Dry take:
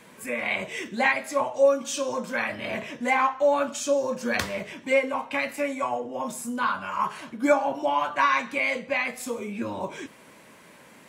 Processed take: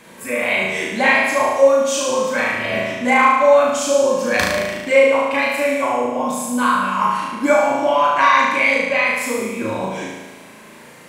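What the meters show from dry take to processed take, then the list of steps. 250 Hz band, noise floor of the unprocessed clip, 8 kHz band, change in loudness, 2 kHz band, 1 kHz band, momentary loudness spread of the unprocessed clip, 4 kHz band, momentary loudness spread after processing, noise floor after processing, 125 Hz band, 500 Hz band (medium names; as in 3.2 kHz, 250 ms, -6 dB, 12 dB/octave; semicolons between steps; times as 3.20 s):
+8.5 dB, -51 dBFS, +9.5 dB, +9.5 dB, +10.0 dB, +9.5 dB, 10 LU, +10.0 dB, 9 LU, -42 dBFS, +9.5 dB, +9.5 dB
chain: flutter echo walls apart 6.3 m, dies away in 1.2 s; trim +5 dB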